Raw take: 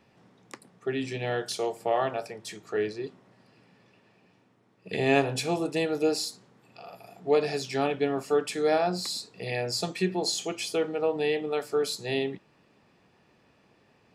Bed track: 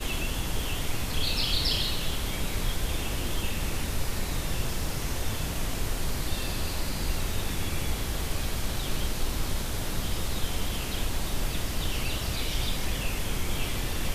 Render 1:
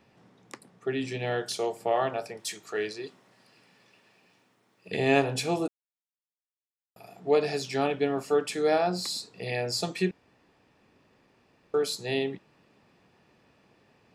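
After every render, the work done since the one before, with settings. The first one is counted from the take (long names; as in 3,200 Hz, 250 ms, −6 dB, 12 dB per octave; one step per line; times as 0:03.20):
0:02.37–0:04.89: spectral tilt +2.5 dB per octave
0:05.68–0:06.96: silence
0:10.11–0:11.74: fill with room tone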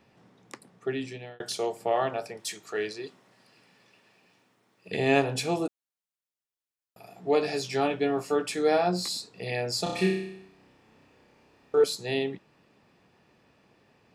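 0:00.88–0:01.40: fade out
0:07.15–0:09.17: double-tracking delay 17 ms −7 dB
0:09.83–0:11.84: flutter between parallel walls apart 5.4 metres, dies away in 0.75 s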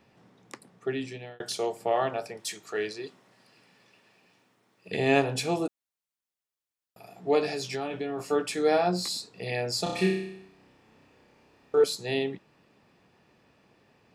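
0:07.46–0:08.20: downward compressor, threshold −28 dBFS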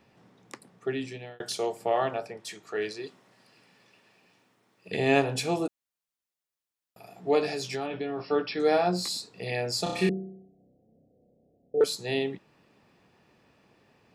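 0:02.18–0:02.82: high-shelf EQ 4,200 Hz −9.5 dB
0:07.86–0:08.60: linear-phase brick-wall low-pass 5,600 Hz
0:10.09–0:11.81: Chebyshev low-pass with heavy ripple 740 Hz, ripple 6 dB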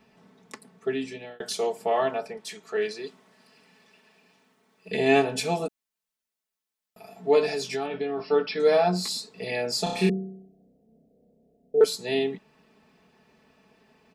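comb filter 4.6 ms, depth 75%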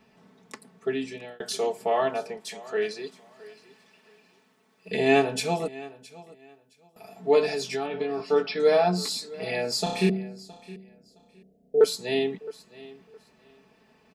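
repeating echo 666 ms, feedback 22%, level −19.5 dB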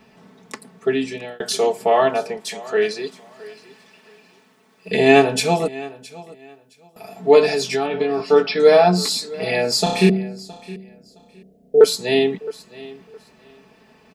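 level +8.5 dB
brickwall limiter −1 dBFS, peak gain reduction 1.5 dB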